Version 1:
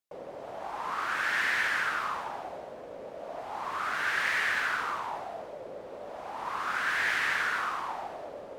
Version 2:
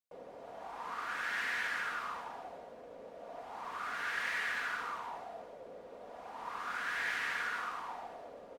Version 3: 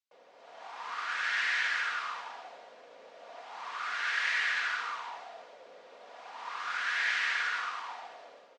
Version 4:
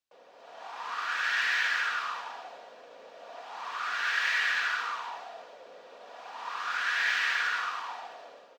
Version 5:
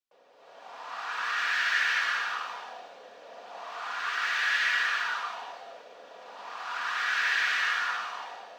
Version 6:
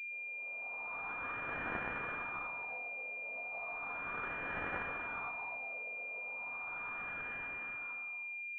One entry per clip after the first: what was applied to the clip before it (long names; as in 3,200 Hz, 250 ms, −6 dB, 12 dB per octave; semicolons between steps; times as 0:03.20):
comb filter 4.2 ms, depth 34%; level −8 dB
meter weighting curve ITU-R 468; automatic gain control gain up to 7 dB; high-frequency loss of the air 120 metres; level −5 dB
running median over 3 samples; notch filter 2,100 Hz, Q 13; level +3 dB
reverb whose tail is shaped and stops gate 410 ms rising, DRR −5 dB; level −5 dB
fade-out on the ending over 2.60 s; multi-voice chorus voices 4, 0.79 Hz, delay 16 ms, depth 2.3 ms; switching amplifier with a slow clock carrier 2,400 Hz; level −2 dB